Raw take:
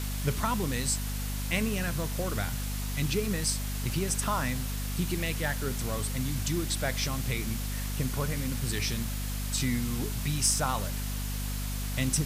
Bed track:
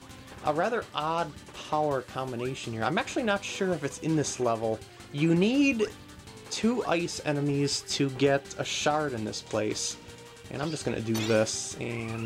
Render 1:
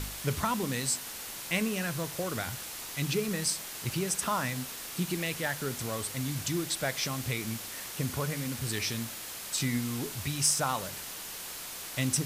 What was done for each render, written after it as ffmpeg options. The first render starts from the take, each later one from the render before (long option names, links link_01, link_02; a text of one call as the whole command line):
ffmpeg -i in.wav -af "bandreject=frequency=50:width_type=h:width=4,bandreject=frequency=100:width_type=h:width=4,bandreject=frequency=150:width_type=h:width=4,bandreject=frequency=200:width_type=h:width=4,bandreject=frequency=250:width_type=h:width=4" out.wav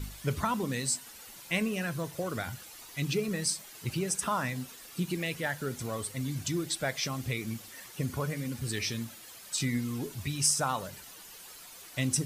ffmpeg -i in.wav -af "afftdn=noise_reduction=11:noise_floor=-41" out.wav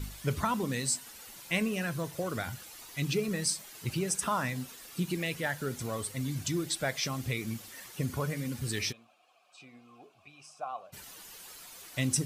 ffmpeg -i in.wav -filter_complex "[0:a]asplit=3[link_01][link_02][link_03];[link_01]afade=type=out:start_time=8.91:duration=0.02[link_04];[link_02]asplit=3[link_05][link_06][link_07];[link_05]bandpass=frequency=730:width_type=q:width=8,volume=0dB[link_08];[link_06]bandpass=frequency=1090:width_type=q:width=8,volume=-6dB[link_09];[link_07]bandpass=frequency=2440:width_type=q:width=8,volume=-9dB[link_10];[link_08][link_09][link_10]amix=inputs=3:normalize=0,afade=type=in:start_time=8.91:duration=0.02,afade=type=out:start_time=10.92:duration=0.02[link_11];[link_03]afade=type=in:start_time=10.92:duration=0.02[link_12];[link_04][link_11][link_12]amix=inputs=3:normalize=0" out.wav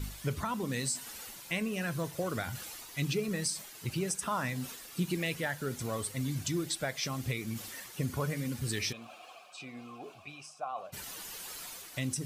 ffmpeg -i in.wav -af "alimiter=limit=-21.5dB:level=0:latency=1:release=421,areverse,acompressor=mode=upward:threshold=-36dB:ratio=2.5,areverse" out.wav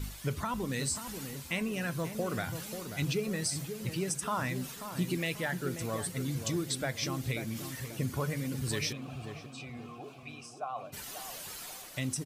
ffmpeg -i in.wav -filter_complex "[0:a]asplit=2[link_01][link_02];[link_02]adelay=537,lowpass=frequency=880:poles=1,volume=-7dB,asplit=2[link_03][link_04];[link_04]adelay=537,lowpass=frequency=880:poles=1,volume=0.46,asplit=2[link_05][link_06];[link_06]adelay=537,lowpass=frequency=880:poles=1,volume=0.46,asplit=2[link_07][link_08];[link_08]adelay=537,lowpass=frequency=880:poles=1,volume=0.46,asplit=2[link_09][link_10];[link_10]adelay=537,lowpass=frequency=880:poles=1,volume=0.46[link_11];[link_01][link_03][link_05][link_07][link_09][link_11]amix=inputs=6:normalize=0" out.wav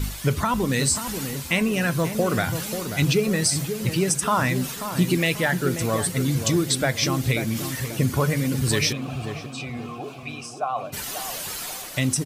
ffmpeg -i in.wav -af "volume=11.5dB" out.wav